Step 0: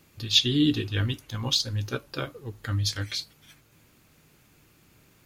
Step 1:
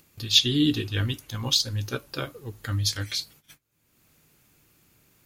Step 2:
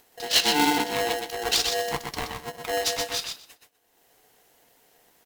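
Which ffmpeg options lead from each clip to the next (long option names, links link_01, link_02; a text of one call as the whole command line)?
ffmpeg -i in.wav -af "highshelf=frequency=6700:gain=8,agate=range=-25dB:threshold=-50dB:ratio=16:detection=peak,acompressor=mode=upward:threshold=-44dB:ratio=2.5" out.wav
ffmpeg -i in.wav -filter_complex "[0:a]asoftclip=type=tanh:threshold=-12dB,asplit=2[link_01][link_02];[link_02]aecho=0:1:124|248|372:0.562|0.0844|0.0127[link_03];[link_01][link_03]amix=inputs=2:normalize=0,aeval=exprs='val(0)*sgn(sin(2*PI*590*n/s))':channel_layout=same" out.wav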